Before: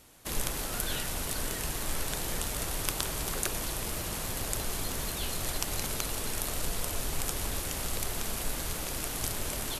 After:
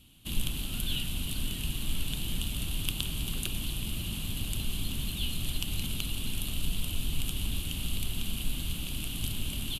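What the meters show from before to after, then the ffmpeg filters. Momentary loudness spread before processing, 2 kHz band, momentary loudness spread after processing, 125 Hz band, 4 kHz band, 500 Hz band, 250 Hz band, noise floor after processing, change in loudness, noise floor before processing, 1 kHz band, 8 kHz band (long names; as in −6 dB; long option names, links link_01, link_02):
2 LU, −4.0 dB, 2 LU, +4.0 dB, +3.0 dB, −12.0 dB, +2.0 dB, −37 dBFS, −1.5 dB, −36 dBFS, −13.0 dB, −6.0 dB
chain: -af "firequalizer=gain_entry='entry(230,0);entry(460,-19);entry(1200,-16);entry(1900,-18);entry(2900,4);entry(5400,-16);entry(9800,-8)':delay=0.05:min_phase=1,volume=4dB"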